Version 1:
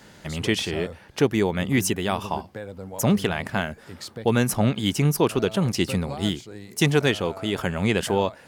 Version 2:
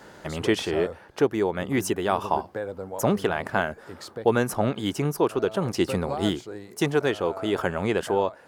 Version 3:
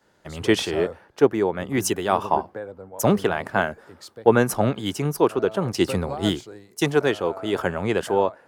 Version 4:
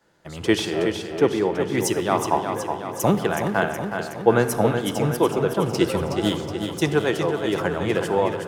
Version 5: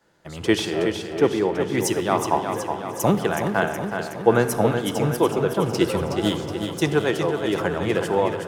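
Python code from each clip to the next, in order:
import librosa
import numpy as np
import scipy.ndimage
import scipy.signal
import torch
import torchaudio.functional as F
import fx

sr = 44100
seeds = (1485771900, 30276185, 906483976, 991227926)

y1 = fx.band_shelf(x, sr, hz=700.0, db=8.0, octaves=2.7)
y1 = fx.rider(y1, sr, range_db=4, speed_s=0.5)
y1 = y1 * 10.0 ** (-6.5 / 20.0)
y2 = fx.band_widen(y1, sr, depth_pct=70)
y2 = y2 * 10.0 ** (2.5 / 20.0)
y3 = fx.echo_feedback(y2, sr, ms=370, feedback_pct=59, wet_db=-7.0)
y3 = fx.room_shoebox(y3, sr, seeds[0], volume_m3=3300.0, walls='mixed', distance_m=0.73)
y3 = y3 * 10.0 ** (-1.0 / 20.0)
y4 = fx.echo_feedback(y3, sr, ms=675, feedback_pct=59, wet_db=-21.5)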